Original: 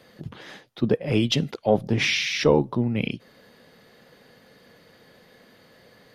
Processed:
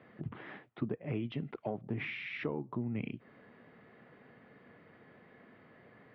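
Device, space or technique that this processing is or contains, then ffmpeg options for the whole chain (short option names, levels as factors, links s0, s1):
bass amplifier: -af "acompressor=threshold=0.0316:ratio=6,highpass=63,equalizer=f=71:t=q:w=4:g=-9,equalizer=f=180:t=q:w=4:g=-3,equalizer=f=520:t=q:w=4:g=-8,equalizer=f=870:t=q:w=4:g=-3,equalizer=f=1600:t=q:w=4:g=-4,lowpass=f=2200:w=0.5412,lowpass=f=2200:w=1.3066,volume=0.841"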